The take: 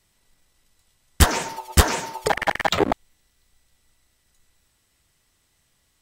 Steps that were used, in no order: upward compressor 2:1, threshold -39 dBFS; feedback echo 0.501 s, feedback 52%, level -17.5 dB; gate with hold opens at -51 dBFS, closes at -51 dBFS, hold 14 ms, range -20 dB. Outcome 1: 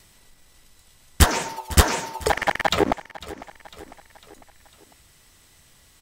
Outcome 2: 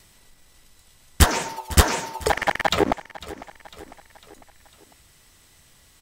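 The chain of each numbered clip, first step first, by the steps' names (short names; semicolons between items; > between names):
upward compressor > gate with hold > feedback echo; upward compressor > feedback echo > gate with hold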